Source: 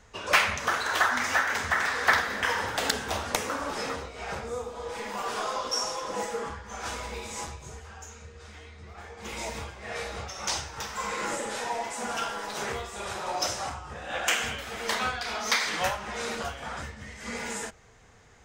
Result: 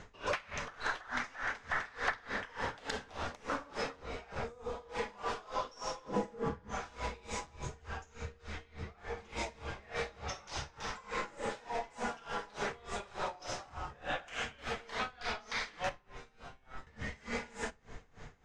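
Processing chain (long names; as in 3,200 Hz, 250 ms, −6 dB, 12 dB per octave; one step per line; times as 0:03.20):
0:06.06–0:06.71: parametric band 180 Hz +15 dB 2.7 octaves
downward compressor 3 to 1, threshold −40 dBFS, peak gain reduction 17.5 dB
0:15.89–0:16.87: tuned comb filter 130 Hz, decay 0.87 s, harmonics all, mix 90%
background noise brown −56 dBFS
high-frequency loss of the air 94 metres
rectangular room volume 600 cubic metres, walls mixed, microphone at 0.34 metres
tremolo with a sine in dB 3.4 Hz, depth 23 dB
level +7 dB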